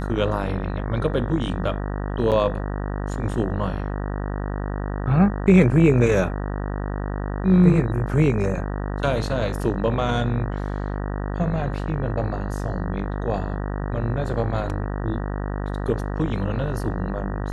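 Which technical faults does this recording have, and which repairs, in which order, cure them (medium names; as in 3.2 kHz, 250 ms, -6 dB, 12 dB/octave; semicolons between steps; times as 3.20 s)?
buzz 50 Hz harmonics 38 -27 dBFS
2.31–2.32 s: dropout 8 ms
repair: de-hum 50 Hz, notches 38; interpolate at 2.31 s, 8 ms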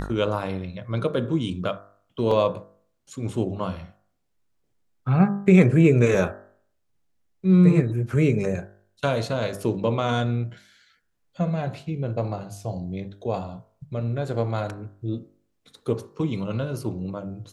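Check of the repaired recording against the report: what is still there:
nothing left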